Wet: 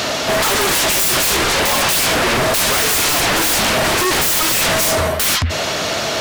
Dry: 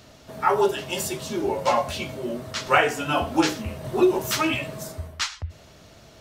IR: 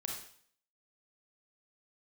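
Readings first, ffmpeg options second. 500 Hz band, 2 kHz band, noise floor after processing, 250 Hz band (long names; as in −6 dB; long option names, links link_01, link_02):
+5.5 dB, +12.0 dB, −21 dBFS, +3.0 dB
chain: -filter_complex "[0:a]asplit=2[link_01][link_02];[link_02]highpass=frequency=720:poles=1,volume=27dB,asoftclip=type=tanh:threshold=-4.5dB[link_03];[link_01][link_03]amix=inputs=2:normalize=0,lowpass=frequency=6500:poles=1,volume=-6dB,aeval=exprs='0.596*sin(PI/2*7.94*val(0)/0.596)':channel_layout=same,volume=-8dB"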